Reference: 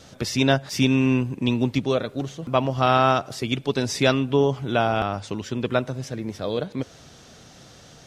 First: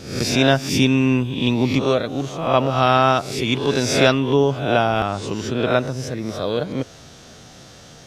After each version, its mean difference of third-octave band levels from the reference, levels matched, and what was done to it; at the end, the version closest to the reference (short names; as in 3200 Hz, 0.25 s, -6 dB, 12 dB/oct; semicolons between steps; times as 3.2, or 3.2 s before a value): 3.5 dB: spectral swells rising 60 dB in 0.62 s; gain +2.5 dB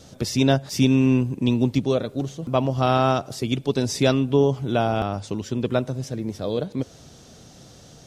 2.0 dB: bell 1800 Hz -8 dB 2.3 oct; gain +2.5 dB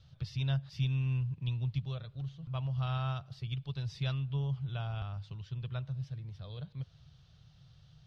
9.5 dB: EQ curve 150 Hz 0 dB, 240 Hz -28 dB, 1200 Hz -16 dB, 2100 Hz -19 dB, 3000 Hz -11 dB, 4400 Hz -12 dB, 7300 Hz -29 dB; gain -5 dB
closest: second